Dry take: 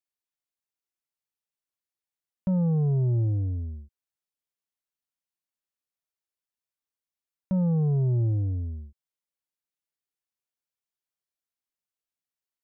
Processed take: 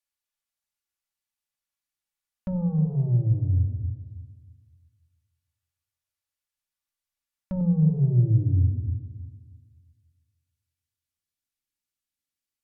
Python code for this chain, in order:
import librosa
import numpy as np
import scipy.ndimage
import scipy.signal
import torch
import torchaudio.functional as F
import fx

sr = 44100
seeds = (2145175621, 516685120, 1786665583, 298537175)

y = fx.room_shoebox(x, sr, seeds[0], volume_m3=3900.0, walls='furnished', distance_m=2.4)
y = fx.env_lowpass_down(y, sr, base_hz=820.0, full_db=-23.0)
y = fx.peak_eq(y, sr, hz=fx.steps((0.0, 340.0), (7.61, 690.0)), db=-10.0, octaves=2.0)
y = fx.echo_filtered(y, sr, ms=314, feedback_pct=30, hz=1100.0, wet_db=-13.5)
y = F.gain(torch.from_numpy(y), 2.5).numpy()